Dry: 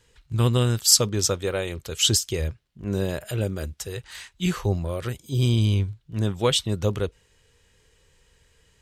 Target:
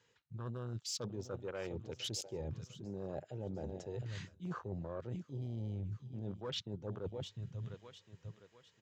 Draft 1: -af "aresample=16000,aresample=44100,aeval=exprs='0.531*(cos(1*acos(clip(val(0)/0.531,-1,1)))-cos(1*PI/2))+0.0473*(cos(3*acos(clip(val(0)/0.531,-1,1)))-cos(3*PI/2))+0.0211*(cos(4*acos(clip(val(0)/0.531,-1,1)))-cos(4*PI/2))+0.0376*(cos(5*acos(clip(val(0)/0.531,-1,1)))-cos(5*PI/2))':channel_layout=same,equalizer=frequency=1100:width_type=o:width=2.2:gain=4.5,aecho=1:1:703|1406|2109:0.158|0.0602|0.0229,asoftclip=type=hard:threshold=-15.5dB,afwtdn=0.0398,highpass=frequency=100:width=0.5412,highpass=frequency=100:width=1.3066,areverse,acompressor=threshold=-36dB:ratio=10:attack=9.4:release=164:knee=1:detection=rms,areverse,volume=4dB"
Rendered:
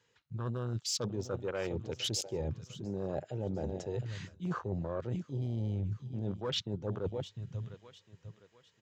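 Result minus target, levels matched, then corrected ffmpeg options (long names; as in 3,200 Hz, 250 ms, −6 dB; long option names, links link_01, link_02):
downward compressor: peak gain reduction −6.5 dB
-af "aresample=16000,aresample=44100,aeval=exprs='0.531*(cos(1*acos(clip(val(0)/0.531,-1,1)))-cos(1*PI/2))+0.0473*(cos(3*acos(clip(val(0)/0.531,-1,1)))-cos(3*PI/2))+0.0211*(cos(4*acos(clip(val(0)/0.531,-1,1)))-cos(4*PI/2))+0.0376*(cos(5*acos(clip(val(0)/0.531,-1,1)))-cos(5*PI/2))':channel_layout=same,equalizer=frequency=1100:width_type=o:width=2.2:gain=4.5,aecho=1:1:703|1406|2109:0.158|0.0602|0.0229,asoftclip=type=hard:threshold=-15.5dB,afwtdn=0.0398,highpass=frequency=100:width=0.5412,highpass=frequency=100:width=1.3066,areverse,acompressor=threshold=-43dB:ratio=10:attack=9.4:release=164:knee=1:detection=rms,areverse,volume=4dB"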